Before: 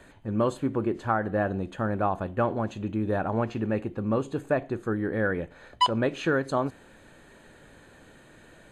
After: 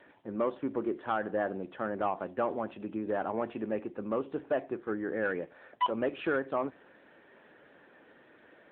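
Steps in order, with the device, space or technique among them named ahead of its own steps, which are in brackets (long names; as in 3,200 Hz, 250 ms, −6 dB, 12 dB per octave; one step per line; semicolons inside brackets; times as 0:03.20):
telephone (band-pass filter 280–3,300 Hz; soft clipping −18 dBFS, distortion −16 dB; level −2 dB; AMR narrowband 10.2 kbit/s 8,000 Hz)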